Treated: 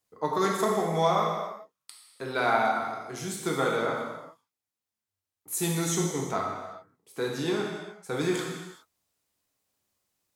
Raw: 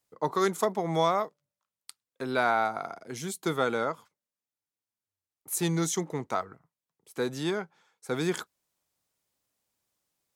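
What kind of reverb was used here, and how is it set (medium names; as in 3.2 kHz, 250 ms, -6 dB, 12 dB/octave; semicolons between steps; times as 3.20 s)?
gated-style reverb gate 440 ms falling, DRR -2 dB; trim -2 dB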